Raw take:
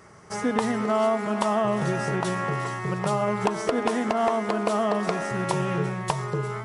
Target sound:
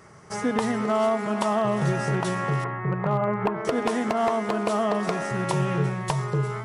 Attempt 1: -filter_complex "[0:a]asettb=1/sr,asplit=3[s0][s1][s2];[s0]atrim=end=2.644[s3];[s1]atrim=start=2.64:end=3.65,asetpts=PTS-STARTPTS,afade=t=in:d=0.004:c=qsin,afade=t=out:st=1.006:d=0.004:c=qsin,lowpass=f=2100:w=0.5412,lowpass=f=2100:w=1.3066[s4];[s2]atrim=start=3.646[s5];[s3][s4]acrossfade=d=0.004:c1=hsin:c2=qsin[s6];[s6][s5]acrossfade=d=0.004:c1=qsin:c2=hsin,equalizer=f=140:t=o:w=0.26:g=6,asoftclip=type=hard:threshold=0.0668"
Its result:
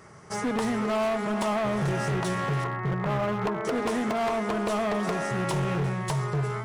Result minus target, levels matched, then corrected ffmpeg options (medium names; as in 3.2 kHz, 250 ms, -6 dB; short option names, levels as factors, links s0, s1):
hard clipper: distortion +15 dB
-filter_complex "[0:a]asettb=1/sr,asplit=3[s0][s1][s2];[s0]atrim=end=2.644[s3];[s1]atrim=start=2.64:end=3.65,asetpts=PTS-STARTPTS,afade=t=in:d=0.004:c=qsin,afade=t=out:st=1.006:d=0.004:c=qsin,lowpass=f=2100:w=0.5412,lowpass=f=2100:w=1.3066[s4];[s2]atrim=start=3.646[s5];[s3][s4]acrossfade=d=0.004:c1=hsin:c2=qsin[s6];[s6][s5]acrossfade=d=0.004:c1=qsin:c2=hsin,equalizer=f=140:t=o:w=0.26:g=6,asoftclip=type=hard:threshold=0.168"